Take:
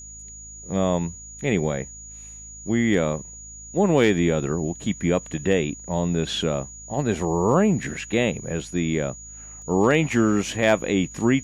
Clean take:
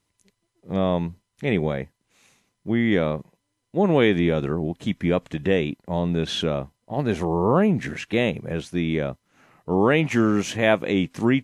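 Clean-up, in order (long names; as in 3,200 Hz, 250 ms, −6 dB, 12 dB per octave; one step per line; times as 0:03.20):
clipped peaks rebuilt −8.5 dBFS
hum removal 53.4 Hz, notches 5
notch filter 6,800 Hz, Q 30
repair the gap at 0:09.62, 1.1 ms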